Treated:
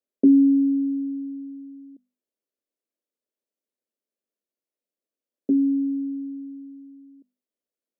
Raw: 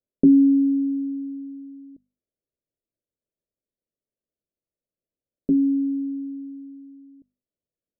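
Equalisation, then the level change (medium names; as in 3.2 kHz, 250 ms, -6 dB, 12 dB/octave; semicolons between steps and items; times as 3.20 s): Chebyshev high-pass 220 Hz, order 4; 0.0 dB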